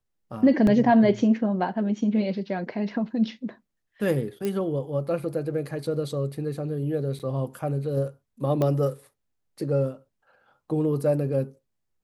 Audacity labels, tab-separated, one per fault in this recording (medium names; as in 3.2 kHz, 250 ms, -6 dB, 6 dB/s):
0.670000	0.670000	dropout 2.1 ms
4.450000	4.450000	pop -16 dBFS
7.190000	7.200000	dropout 7.8 ms
8.620000	8.620000	pop -14 dBFS